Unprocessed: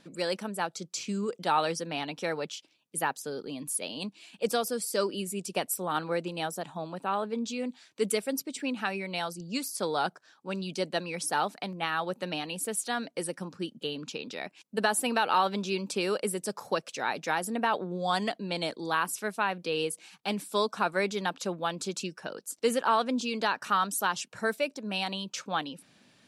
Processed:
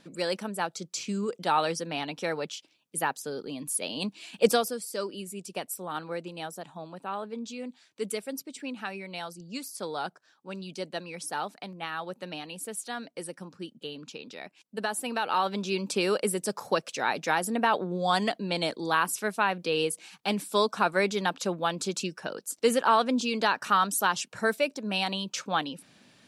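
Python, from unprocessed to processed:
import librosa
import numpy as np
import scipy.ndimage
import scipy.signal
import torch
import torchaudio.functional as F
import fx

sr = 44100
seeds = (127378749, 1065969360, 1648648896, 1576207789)

y = fx.gain(x, sr, db=fx.line((3.67, 1.0), (4.45, 8.0), (4.81, -4.5), (15.02, -4.5), (15.93, 3.0)))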